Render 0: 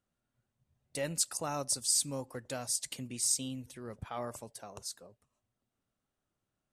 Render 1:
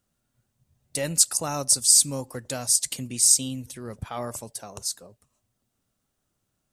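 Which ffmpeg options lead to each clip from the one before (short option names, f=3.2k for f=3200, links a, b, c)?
-af "bass=f=250:g=3,treble=f=4k:g=7,volume=6dB"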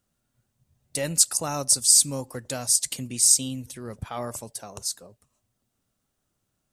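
-af anull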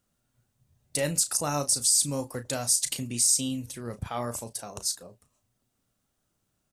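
-filter_complex "[0:a]alimiter=limit=-12.5dB:level=0:latency=1:release=74,asplit=2[a][b];[b]adelay=34,volume=-10.5dB[c];[a][c]amix=inputs=2:normalize=0"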